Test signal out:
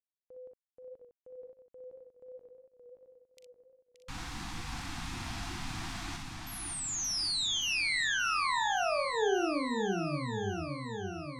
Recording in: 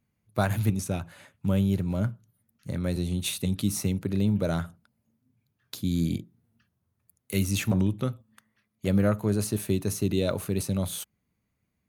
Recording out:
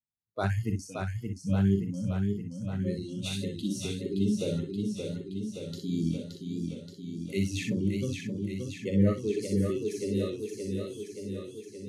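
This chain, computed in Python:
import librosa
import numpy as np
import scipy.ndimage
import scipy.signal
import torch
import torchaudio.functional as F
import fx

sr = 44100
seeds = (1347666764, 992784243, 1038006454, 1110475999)

p1 = fx.fade_out_tail(x, sr, length_s=2.6)
p2 = fx.notch(p1, sr, hz=3000.0, q=26.0)
p3 = p2 + fx.room_early_taps(p2, sr, ms=(41, 61), db=(-10.0, -4.5), dry=0)
p4 = fx.noise_reduce_blind(p3, sr, reduce_db=24)
p5 = fx.dynamic_eq(p4, sr, hz=410.0, q=4.0, threshold_db=-44.0, ratio=4.0, max_db=6)
p6 = scipy.signal.sosfilt(scipy.signal.butter(2, 6500.0, 'lowpass', fs=sr, output='sos'), p5)
p7 = fx.echo_warbled(p6, sr, ms=574, feedback_pct=67, rate_hz=2.8, cents=70, wet_db=-5.0)
y = p7 * 10.0 ** (-5.0 / 20.0)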